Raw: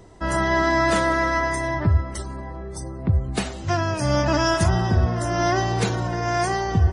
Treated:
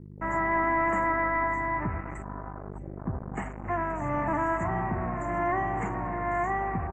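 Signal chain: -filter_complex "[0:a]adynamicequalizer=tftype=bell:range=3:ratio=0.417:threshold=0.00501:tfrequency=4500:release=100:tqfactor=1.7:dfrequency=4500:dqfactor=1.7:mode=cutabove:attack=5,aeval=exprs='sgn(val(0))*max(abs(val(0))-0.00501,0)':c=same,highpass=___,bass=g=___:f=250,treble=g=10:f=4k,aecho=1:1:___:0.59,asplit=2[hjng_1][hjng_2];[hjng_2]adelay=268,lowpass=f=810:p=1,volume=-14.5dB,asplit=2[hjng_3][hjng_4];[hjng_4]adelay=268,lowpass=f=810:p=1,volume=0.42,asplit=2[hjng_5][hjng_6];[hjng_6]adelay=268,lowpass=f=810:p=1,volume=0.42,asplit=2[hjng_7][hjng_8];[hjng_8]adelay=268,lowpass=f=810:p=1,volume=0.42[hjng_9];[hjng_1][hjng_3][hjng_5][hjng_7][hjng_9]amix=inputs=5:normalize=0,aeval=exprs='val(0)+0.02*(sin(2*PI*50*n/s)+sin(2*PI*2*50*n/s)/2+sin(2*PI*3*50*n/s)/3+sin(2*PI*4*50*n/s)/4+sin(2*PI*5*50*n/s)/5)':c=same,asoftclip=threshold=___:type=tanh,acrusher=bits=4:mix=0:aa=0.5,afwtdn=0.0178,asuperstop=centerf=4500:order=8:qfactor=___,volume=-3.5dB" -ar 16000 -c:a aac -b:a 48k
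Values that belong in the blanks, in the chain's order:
170, -5, 1, -16dB, 0.67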